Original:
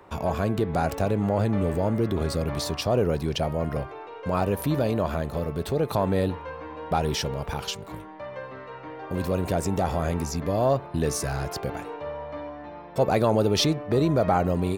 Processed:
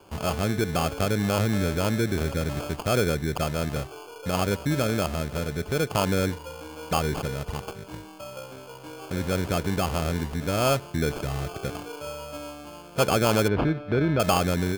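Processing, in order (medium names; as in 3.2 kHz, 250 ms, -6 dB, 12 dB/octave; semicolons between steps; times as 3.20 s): local Wiener filter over 25 samples; sample-and-hold 23×; 13.48–14.20 s: distance through air 370 m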